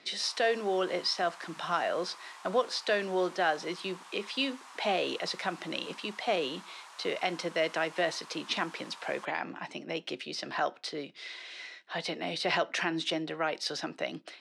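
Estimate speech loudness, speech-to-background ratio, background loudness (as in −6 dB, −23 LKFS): −33.0 LKFS, 16.5 dB, −49.5 LKFS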